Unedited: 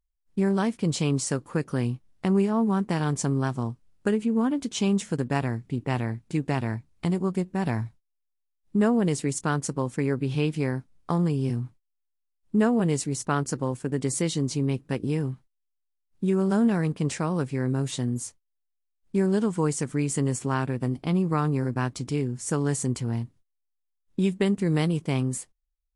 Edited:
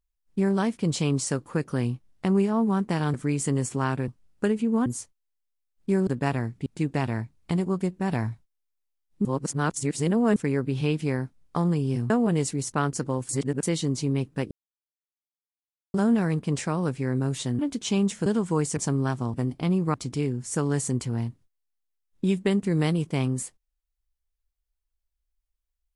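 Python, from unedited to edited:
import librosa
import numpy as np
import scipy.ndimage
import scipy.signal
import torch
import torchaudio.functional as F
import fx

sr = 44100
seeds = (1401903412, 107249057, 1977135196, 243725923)

y = fx.edit(x, sr, fx.swap(start_s=3.14, length_s=0.57, other_s=19.84, other_length_s=0.94),
    fx.swap(start_s=4.49, length_s=0.67, other_s=18.12, other_length_s=1.21),
    fx.cut(start_s=5.75, length_s=0.45),
    fx.reverse_span(start_s=8.79, length_s=1.11),
    fx.cut(start_s=11.64, length_s=0.99),
    fx.reverse_span(start_s=13.82, length_s=0.34),
    fx.silence(start_s=15.04, length_s=1.43),
    fx.cut(start_s=21.38, length_s=0.51), tone=tone)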